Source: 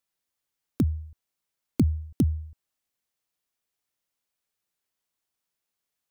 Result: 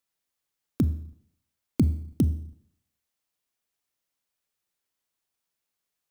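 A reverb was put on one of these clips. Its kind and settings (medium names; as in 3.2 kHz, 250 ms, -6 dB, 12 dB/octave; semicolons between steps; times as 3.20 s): Schroeder reverb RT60 0.67 s, combs from 28 ms, DRR 13.5 dB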